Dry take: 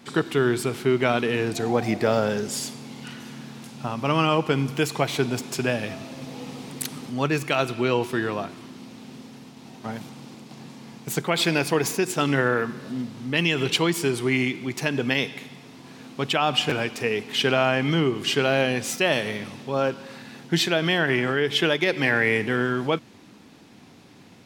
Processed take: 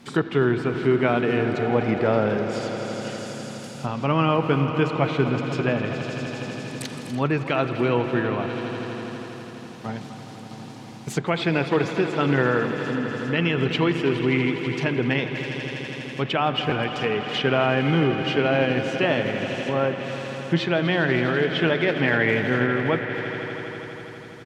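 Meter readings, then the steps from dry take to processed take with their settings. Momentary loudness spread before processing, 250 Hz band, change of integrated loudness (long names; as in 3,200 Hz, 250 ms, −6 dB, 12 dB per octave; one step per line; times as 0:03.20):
18 LU, +2.5 dB, +0.5 dB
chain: low-shelf EQ 140 Hz +5.5 dB
floating-point word with a short mantissa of 4 bits
on a send: echo that builds up and dies away 82 ms, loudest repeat 5, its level −14.5 dB
on the sum: treble cut that deepens with the level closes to 2,500 Hz, closed at −20.5 dBFS
far-end echo of a speakerphone 250 ms, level −14 dB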